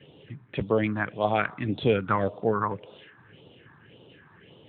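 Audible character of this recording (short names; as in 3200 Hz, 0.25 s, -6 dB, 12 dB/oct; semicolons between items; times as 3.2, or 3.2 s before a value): phasing stages 4, 1.8 Hz, lowest notch 500–1800 Hz; AMR-NB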